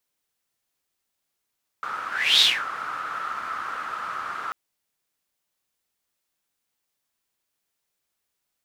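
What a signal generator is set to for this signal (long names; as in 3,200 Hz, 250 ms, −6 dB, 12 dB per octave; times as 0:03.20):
pass-by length 2.69 s, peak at 0:00.59, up 0.35 s, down 0.23 s, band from 1,300 Hz, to 3,800 Hz, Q 8.4, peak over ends 15.5 dB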